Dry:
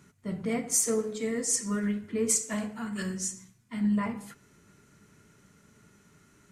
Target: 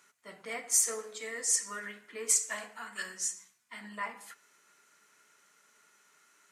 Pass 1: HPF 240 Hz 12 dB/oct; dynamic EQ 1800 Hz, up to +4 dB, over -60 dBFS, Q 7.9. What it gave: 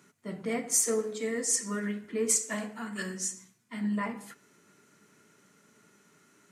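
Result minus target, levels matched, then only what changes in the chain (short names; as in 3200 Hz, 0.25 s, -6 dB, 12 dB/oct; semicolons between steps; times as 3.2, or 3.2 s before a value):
250 Hz band +17.5 dB
change: HPF 810 Hz 12 dB/oct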